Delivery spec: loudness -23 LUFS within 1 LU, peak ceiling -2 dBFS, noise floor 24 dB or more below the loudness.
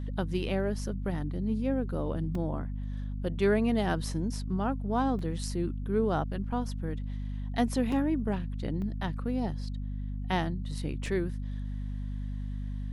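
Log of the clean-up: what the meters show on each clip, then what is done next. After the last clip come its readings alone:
dropouts 5; longest dropout 2.8 ms; hum 50 Hz; highest harmonic 250 Hz; hum level -32 dBFS; loudness -32.0 LUFS; peak level -13.5 dBFS; loudness target -23.0 LUFS
-> interpolate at 2.35/5.19/7.92/8.82/11.06 s, 2.8 ms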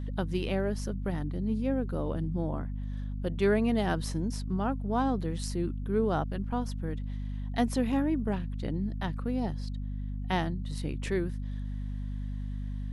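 dropouts 0; hum 50 Hz; highest harmonic 250 Hz; hum level -32 dBFS
-> hum notches 50/100/150/200/250 Hz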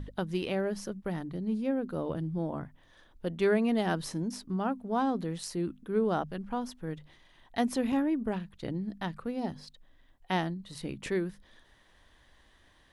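hum not found; loudness -33.0 LUFS; peak level -14.5 dBFS; loudness target -23.0 LUFS
-> trim +10 dB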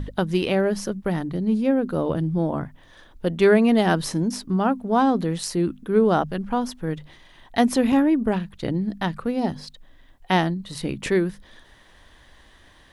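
loudness -23.0 LUFS; peak level -4.5 dBFS; noise floor -53 dBFS

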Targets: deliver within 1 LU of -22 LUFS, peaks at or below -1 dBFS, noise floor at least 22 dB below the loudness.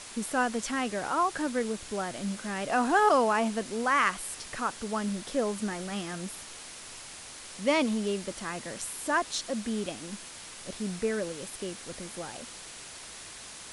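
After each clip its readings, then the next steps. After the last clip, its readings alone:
noise floor -45 dBFS; noise floor target -53 dBFS; loudness -30.5 LUFS; peak level -11.5 dBFS; loudness target -22.0 LUFS
-> noise print and reduce 8 dB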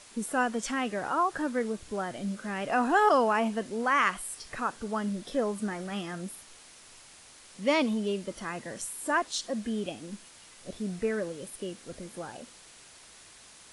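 noise floor -53 dBFS; loudness -30.0 LUFS; peak level -11.5 dBFS; loudness target -22.0 LUFS
-> trim +8 dB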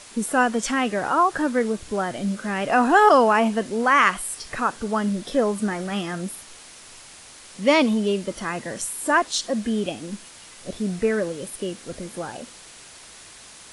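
loudness -22.0 LUFS; peak level -3.5 dBFS; noise floor -45 dBFS

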